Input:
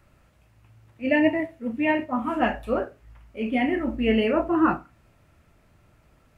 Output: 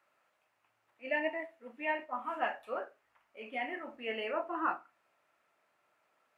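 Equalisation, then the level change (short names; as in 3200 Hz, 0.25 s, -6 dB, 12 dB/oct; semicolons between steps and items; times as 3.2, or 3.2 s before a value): HPF 770 Hz 12 dB/oct; high shelf 2500 Hz -9 dB; -5.0 dB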